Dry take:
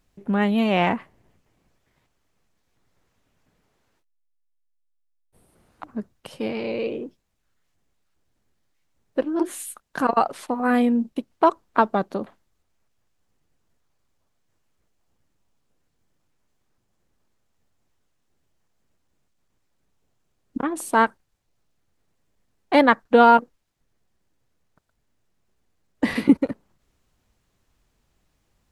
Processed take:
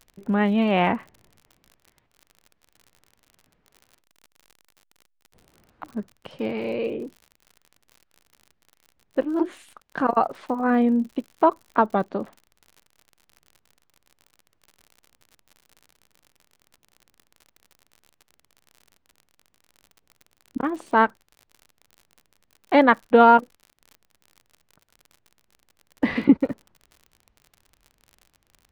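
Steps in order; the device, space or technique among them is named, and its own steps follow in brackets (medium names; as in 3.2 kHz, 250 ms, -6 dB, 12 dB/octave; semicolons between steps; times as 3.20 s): lo-fi chain (low-pass 3.2 kHz 12 dB/octave; wow and flutter 23 cents; crackle 54 per s -37 dBFS); 10.01–11.88 s: dynamic bell 2.8 kHz, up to -5 dB, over -37 dBFS, Q 0.78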